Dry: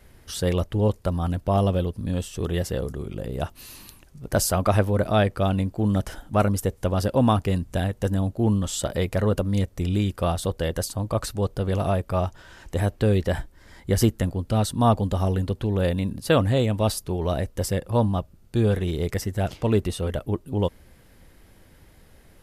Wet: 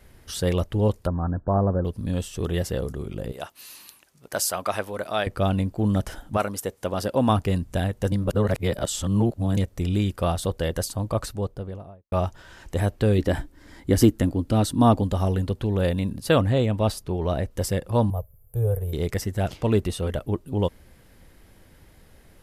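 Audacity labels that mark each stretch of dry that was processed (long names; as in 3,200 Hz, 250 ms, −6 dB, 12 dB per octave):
1.070000	1.850000	Chebyshev low-pass filter 1,700 Hz, order 8
3.320000	5.270000	high-pass filter 900 Hz 6 dB per octave
6.360000	7.280000	high-pass filter 650 Hz → 170 Hz 6 dB per octave
8.120000	9.570000	reverse
11.020000	12.120000	fade out and dull
13.180000	15.030000	parametric band 290 Hz +11.5 dB 0.43 octaves
16.410000	17.510000	high-shelf EQ 4,700 Hz −7.5 dB
18.100000	18.930000	drawn EQ curve 120 Hz 0 dB, 290 Hz −30 dB, 460 Hz 0 dB, 1,900 Hz −19 dB, 4,900 Hz −28 dB, 13,000 Hz +15 dB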